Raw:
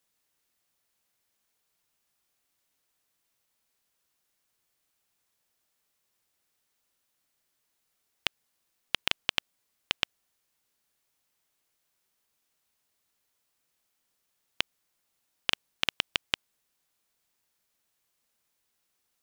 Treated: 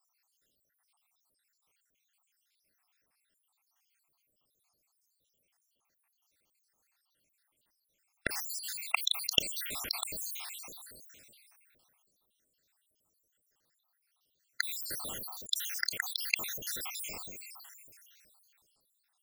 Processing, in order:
time-frequency cells dropped at random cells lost 79%
dynamic equaliser 5,400 Hz, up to +4 dB, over −53 dBFS, Q 1.4
level that may fall only so fast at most 20 dB per second
level +6 dB

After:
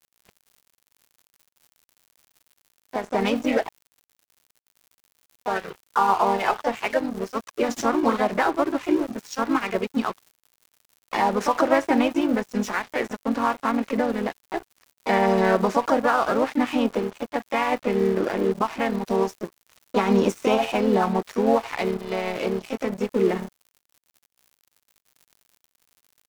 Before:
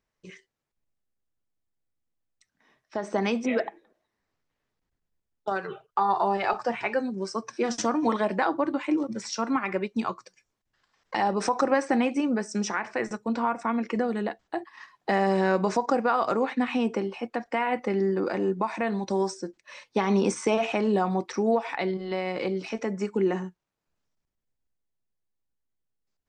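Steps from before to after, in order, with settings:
high-shelf EQ 6,800 Hz −8 dB
surface crackle 260 per second −38 dBFS
pitch-shifted copies added +3 semitones −4 dB
dead-zone distortion −37.5 dBFS
level +3.5 dB

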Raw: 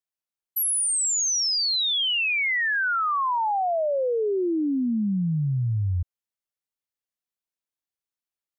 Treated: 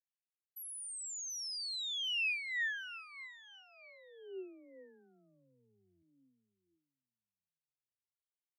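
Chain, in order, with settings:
first difference
on a send: repeating echo 735 ms, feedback 29%, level −15 dB
on the sum: formant filter swept between two vowels e-i 0.4 Hz
level +8 dB

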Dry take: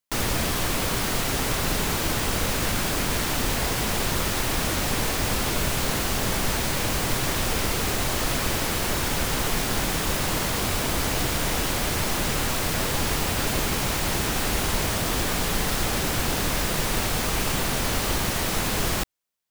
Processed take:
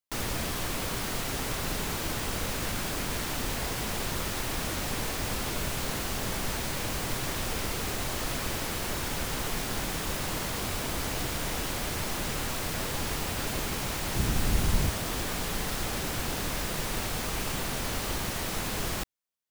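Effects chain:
0:14.16–0:14.90: bass and treble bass +10 dB, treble +1 dB
level −7 dB

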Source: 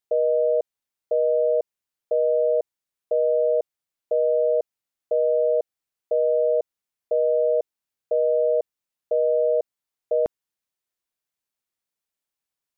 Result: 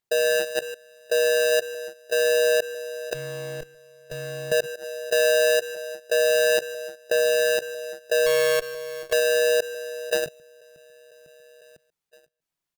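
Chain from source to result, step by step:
each half-wave held at its own peak
phase shifter 0.28 Hz, delay 3.2 ms, feedback 22%
repeating echo 501 ms, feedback 55%, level −20 dB
0:03.14–0:04.52: tube saturation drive 19 dB, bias 0.6
parametric band 150 Hz +10 dB 0.57 octaves
single-tap delay 139 ms −21 dB
output level in coarse steps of 18 dB
brickwall limiter −18 dBFS, peak gain reduction 6 dB
0:08.26–0:09.13: windowed peak hold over 5 samples
level +3 dB

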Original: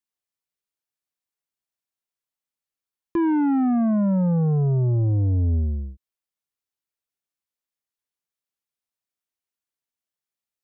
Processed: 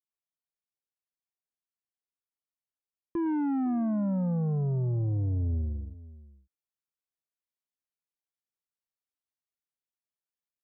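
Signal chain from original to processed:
high-shelf EQ 2,100 Hz −12 dB, from 0:03.26 −4 dB
slap from a distant wall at 87 metres, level −18 dB
level −8 dB

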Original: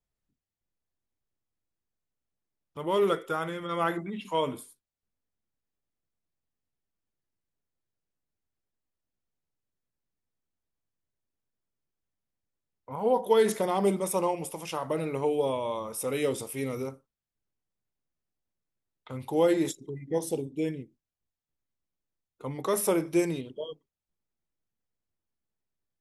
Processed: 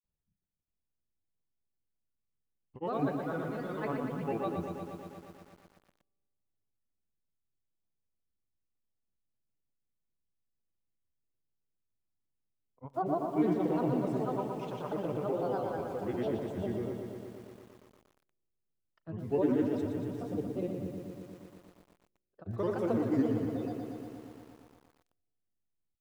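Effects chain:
tilt shelving filter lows +6 dB, about 690 Hz
granular cloud 100 ms, grains 20 per second, pitch spread up and down by 7 semitones
high-frequency loss of the air 140 metres
on a send at −17.5 dB: convolution reverb RT60 2.1 s, pre-delay 36 ms
on the sum: feedback echo at a low word length 118 ms, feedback 80%, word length 9 bits, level −6 dB
level −6.5 dB

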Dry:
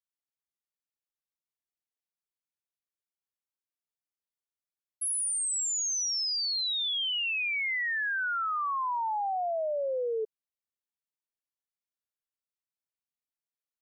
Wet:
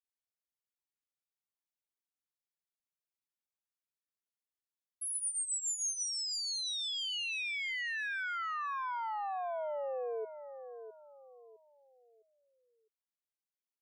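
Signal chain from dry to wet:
0:05.15–0:06.03: comb filter 1.4 ms, depth 61%
repeating echo 658 ms, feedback 34%, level −10.5 dB
level −7 dB

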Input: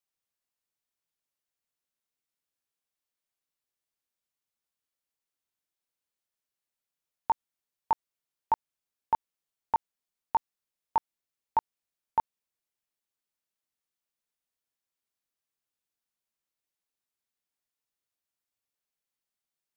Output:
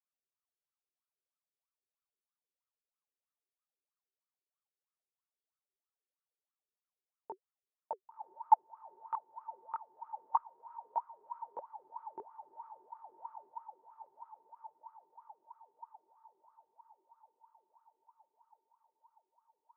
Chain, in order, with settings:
feedback delay with all-pass diffusion 1,072 ms, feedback 63%, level −11.5 dB
LFO wah 3.1 Hz 370–1,300 Hz, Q 14
0:10.35–0:11.58: frequency shifter +31 Hz
level +6.5 dB

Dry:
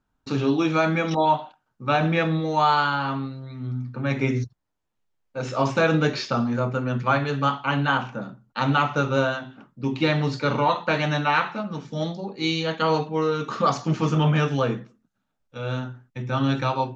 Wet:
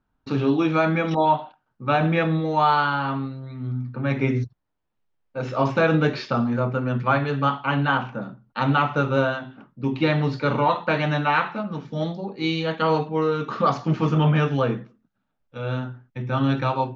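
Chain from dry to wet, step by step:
high-frequency loss of the air 170 metres
level +1.5 dB

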